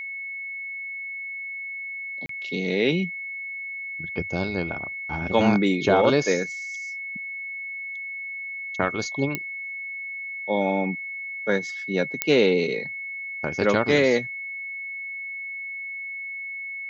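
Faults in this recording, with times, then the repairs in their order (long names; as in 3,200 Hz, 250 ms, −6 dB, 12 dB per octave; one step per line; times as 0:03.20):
whistle 2,200 Hz −31 dBFS
0:02.26–0:02.29: drop-out 33 ms
0:09.35: click −11 dBFS
0:12.22: click −4 dBFS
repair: click removal
notch filter 2,200 Hz, Q 30
repair the gap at 0:02.26, 33 ms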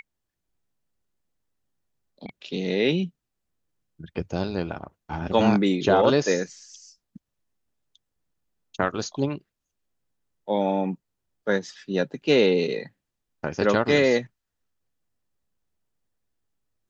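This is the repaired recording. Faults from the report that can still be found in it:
none of them is left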